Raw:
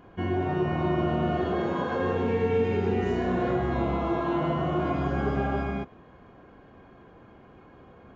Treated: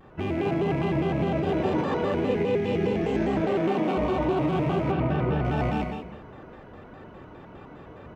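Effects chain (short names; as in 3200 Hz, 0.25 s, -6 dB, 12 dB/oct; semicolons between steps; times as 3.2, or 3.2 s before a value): rattling part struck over -32 dBFS, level -32 dBFS; 3.41–3.98 steep high-pass 160 Hz 96 dB/oct; outdoor echo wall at 29 m, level -12 dB; AGC gain up to 4.5 dB; limiter -19 dBFS, peak gain reduction 10 dB; non-linear reverb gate 0.22 s flat, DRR 2 dB; dynamic EQ 1400 Hz, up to -4 dB, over -42 dBFS, Q 0.97; 4.91–5.45 LPF 3100 Hz 12 dB/oct; shaped vibrato square 4.9 Hz, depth 160 cents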